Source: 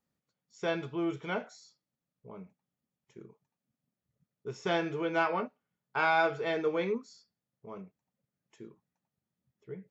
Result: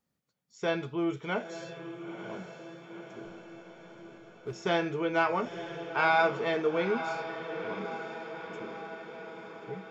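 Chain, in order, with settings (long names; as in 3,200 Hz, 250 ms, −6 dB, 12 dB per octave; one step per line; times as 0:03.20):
0:03.24–0:04.53: slack as between gear wheels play −41 dBFS
feedback delay with all-pass diffusion 946 ms, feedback 62%, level −9.5 dB
level +2 dB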